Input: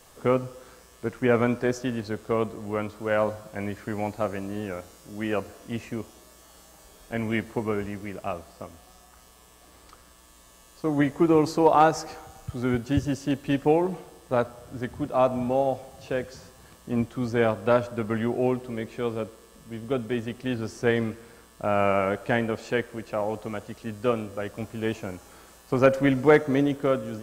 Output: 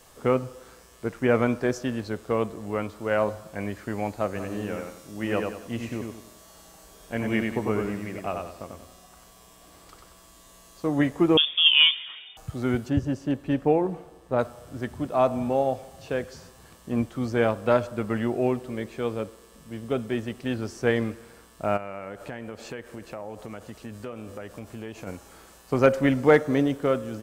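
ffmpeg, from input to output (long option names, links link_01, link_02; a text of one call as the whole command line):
ffmpeg -i in.wav -filter_complex "[0:a]asplit=3[link_01][link_02][link_03];[link_01]afade=type=out:start_time=4.35:duration=0.02[link_04];[link_02]aecho=1:1:94|188|282|376:0.631|0.221|0.0773|0.0271,afade=type=in:start_time=4.35:duration=0.02,afade=type=out:start_time=10.86:duration=0.02[link_05];[link_03]afade=type=in:start_time=10.86:duration=0.02[link_06];[link_04][link_05][link_06]amix=inputs=3:normalize=0,asettb=1/sr,asplit=3[link_07][link_08][link_09];[link_07]atrim=end=11.374[link_10];[link_08]atrim=start=11.37:end=12.37,asetpts=PTS-STARTPTS,afade=type=in:duration=0.004:curve=qsin,afade=type=out:start_time=0.996:duration=0.004:curve=qsin,lowpass=frequency=3100:width_type=q:width=0.5098,lowpass=frequency=3100:width_type=q:width=0.6013,lowpass=frequency=3100:width_type=q:width=0.9,lowpass=frequency=3100:width_type=q:width=2.563,afreqshift=-3700[link_11];[link_09]atrim=start=12.366[link_12];[link_10][link_11]acrossfade=duration=0.004:curve1=hsin:curve2=qsin[link_13];[link_13][link_12]acrossfade=duration=0.004:curve1=qsin:curve2=hsin,asplit=3[link_14][link_15][link_16];[link_14]afade=type=out:start_time=12.88:duration=0.02[link_17];[link_15]highshelf=frequency=2200:gain=-10,afade=type=in:start_time=12.88:duration=0.02,afade=type=out:start_time=14.38:duration=0.02[link_18];[link_16]afade=type=in:start_time=14.38:duration=0.02[link_19];[link_17][link_18][link_19]amix=inputs=3:normalize=0,asplit=3[link_20][link_21][link_22];[link_20]afade=type=out:start_time=21.76:duration=0.02[link_23];[link_21]acompressor=threshold=-33dB:ratio=5:attack=3.2:release=140:knee=1:detection=peak,afade=type=in:start_time=21.76:duration=0.02,afade=type=out:start_time=25.06:duration=0.02[link_24];[link_22]afade=type=in:start_time=25.06:duration=0.02[link_25];[link_23][link_24][link_25]amix=inputs=3:normalize=0" out.wav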